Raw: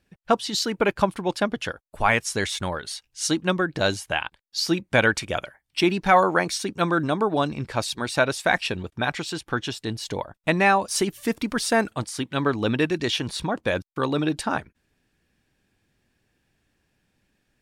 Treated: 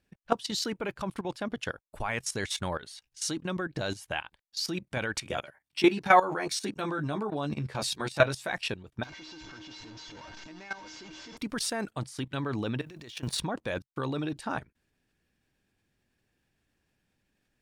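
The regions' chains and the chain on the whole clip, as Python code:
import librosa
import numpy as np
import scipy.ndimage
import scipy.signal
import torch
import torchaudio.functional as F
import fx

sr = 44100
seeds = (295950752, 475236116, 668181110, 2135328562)

y = fx.chain(x, sr, fx.highpass(hz=88.0, slope=12),
    fx.doubler(ms=14.0, db=-3), at=(5.24, 8.52))
y = fx.chain(y, sr, fx.delta_mod(bps=32000, step_db=-17.5),
    fx.comb_fb(f0_hz=310.0, decay_s=0.25, harmonics='odd', damping=0.0, mix_pct=90), at=(9.03, 11.37))
y = fx.chain(y, sr, fx.law_mismatch(coded='A'),
    fx.over_compress(threshold_db=-33.0, ratio=-1.0),
    fx.high_shelf(hz=7200.0, db=3.5), at=(12.81, 13.41))
y = fx.dynamic_eq(y, sr, hz=130.0, q=6.8, threshold_db=-47.0, ratio=4.0, max_db=6)
y = fx.level_steps(y, sr, step_db=15)
y = y * librosa.db_to_amplitude(-1.5)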